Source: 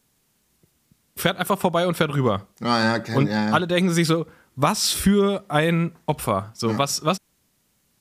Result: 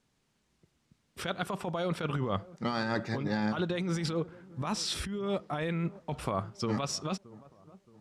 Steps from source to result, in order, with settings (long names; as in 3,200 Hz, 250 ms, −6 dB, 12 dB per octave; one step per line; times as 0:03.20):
compressor whose output falls as the input rises −23 dBFS, ratio −1
high-frequency loss of the air 78 metres
on a send: delay with a low-pass on its return 622 ms, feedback 41%, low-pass 1,100 Hz, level −20 dB
on the sum: level −8 dB